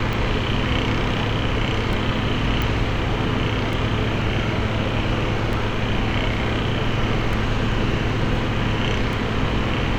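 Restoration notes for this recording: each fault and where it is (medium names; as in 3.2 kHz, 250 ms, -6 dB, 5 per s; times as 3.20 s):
tick 33 1/3 rpm
2.62 s: pop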